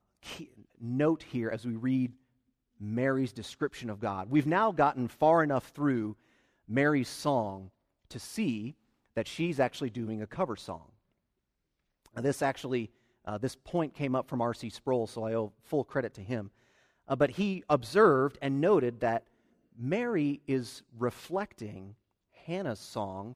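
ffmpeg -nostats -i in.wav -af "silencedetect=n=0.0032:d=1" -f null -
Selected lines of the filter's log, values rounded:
silence_start: 10.89
silence_end: 12.06 | silence_duration: 1.17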